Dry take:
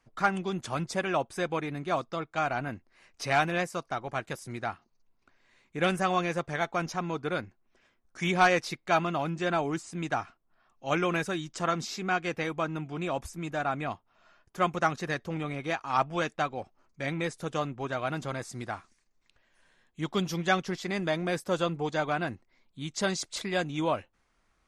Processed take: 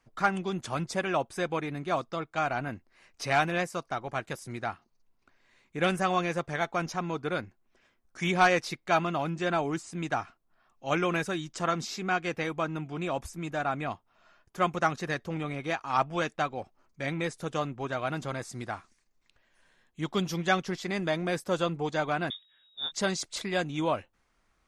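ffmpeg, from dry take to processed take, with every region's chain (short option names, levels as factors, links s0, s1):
-filter_complex "[0:a]asettb=1/sr,asplit=3[s0][s1][s2];[s0]atrim=end=22.304[s3];[s1]atrim=start=22.3:end=22.92,asetpts=PTS-STARTPTS,afade=t=in:d=0.004:c=qsin,afade=t=out:st=0.616:d=0.004:c=qsin,equalizer=f=390:w=2.9:g=11.5,asplit=2[s4][s5];[s5]adelay=21,volume=0.282[s6];[s4][s6]amix=inputs=2:normalize=0,atrim=end_sample=27342,lowpass=f=3200:t=q:w=0.5098,lowpass=f=3200:t=q:w=0.6013,lowpass=f=3200:t=q:w=0.9,lowpass=f=3200:t=q:w=2.563,afreqshift=-3800[s7];[s2]atrim=start=22.916[s8];[s3][s7]acrossfade=d=0.004:c1=hsin:c2=qsin[s9];[s9][s8]acrossfade=d=0.004:c1=qsin:c2=hsin"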